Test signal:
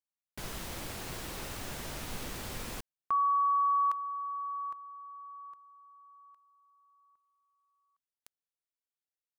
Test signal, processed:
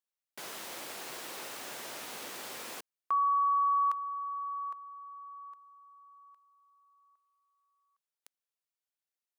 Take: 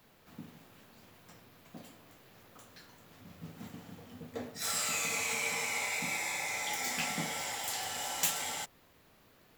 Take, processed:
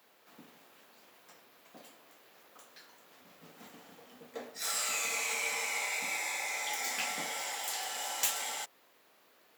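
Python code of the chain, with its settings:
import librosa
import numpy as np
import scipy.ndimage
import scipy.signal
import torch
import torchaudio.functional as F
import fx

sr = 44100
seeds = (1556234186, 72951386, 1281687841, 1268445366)

y = scipy.signal.sosfilt(scipy.signal.butter(2, 390.0, 'highpass', fs=sr, output='sos'), x)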